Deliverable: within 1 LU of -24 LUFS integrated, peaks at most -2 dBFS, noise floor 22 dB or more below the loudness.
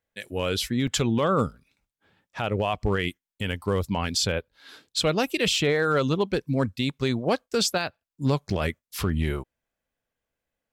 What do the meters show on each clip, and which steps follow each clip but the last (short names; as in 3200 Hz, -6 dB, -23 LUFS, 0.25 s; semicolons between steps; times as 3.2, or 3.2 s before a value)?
clipped 0.2%; flat tops at -15.0 dBFS; dropouts 2; longest dropout 5.4 ms; loudness -26.0 LUFS; peak -15.0 dBFS; loudness target -24.0 LUFS
-> clip repair -15 dBFS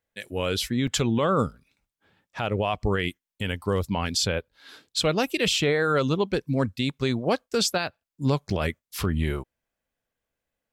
clipped 0.0%; dropouts 2; longest dropout 5.4 ms
-> interpolate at 0.87/8.5, 5.4 ms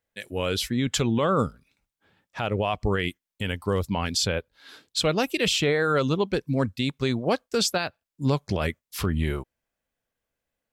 dropouts 0; loudness -26.0 LUFS; peak -12.5 dBFS; loudness target -24.0 LUFS
-> gain +2 dB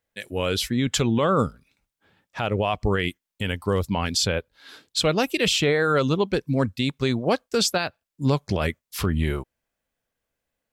loudness -24.0 LUFS; peak -10.5 dBFS; noise floor -86 dBFS